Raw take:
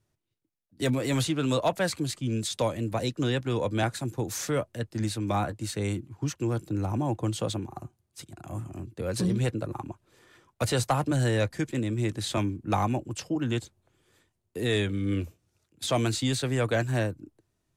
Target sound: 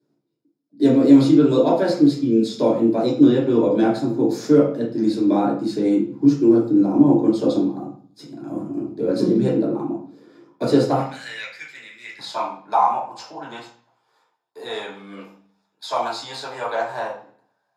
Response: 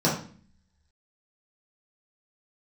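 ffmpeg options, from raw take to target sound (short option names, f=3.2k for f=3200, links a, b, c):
-filter_complex "[0:a]asetnsamples=n=441:p=0,asendcmd='10.98 highpass f 2100;12.19 highpass f 890',highpass=f=300:t=q:w=3.7[a];[1:a]atrim=start_sample=2205,asetrate=39690,aresample=44100[b];[a][b]afir=irnorm=-1:irlink=0,volume=-13dB"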